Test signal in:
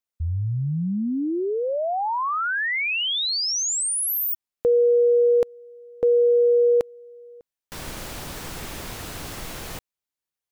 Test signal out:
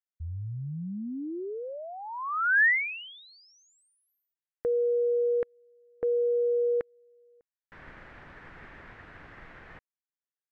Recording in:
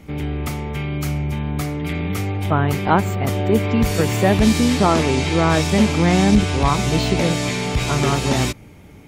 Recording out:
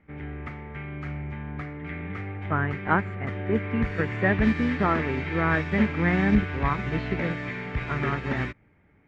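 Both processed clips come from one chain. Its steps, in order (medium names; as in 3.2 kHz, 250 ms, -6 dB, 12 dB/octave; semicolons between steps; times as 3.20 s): dynamic bell 770 Hz, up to -5 dB, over -32 dBFS, Q 1.4; resonant low-pass 1.8 kHz, resonance Q 3.2; upward expansion 1.5:1, over -36 dBFS; trim -5.5 dB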